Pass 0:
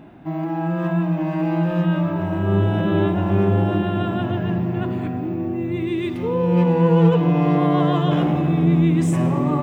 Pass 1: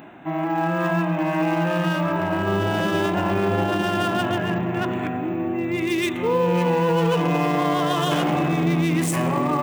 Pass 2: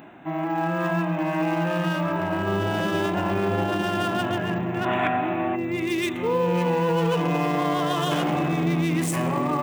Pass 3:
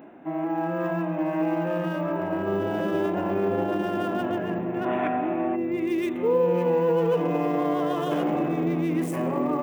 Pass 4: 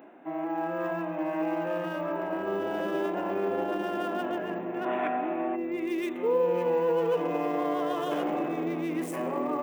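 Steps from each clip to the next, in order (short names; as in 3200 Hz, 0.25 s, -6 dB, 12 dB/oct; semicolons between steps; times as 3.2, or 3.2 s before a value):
Wiener smoothing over 9 samples; tilt +4 dB/oct; limiter -18.5 dBFS, peak gain reduction 7.5 dB; gain +6.5 dB
spectral gain 4.86–5.55, 580–3900 Hz +10 dB; gain -2.5 dB
graphic EQ 125/250/500/4000/8000 Hz -5/+7/+8/-6/-6 dB; gain -6.5 dB
Bessel high-pass 330 Hz, order 2; gain -2 dB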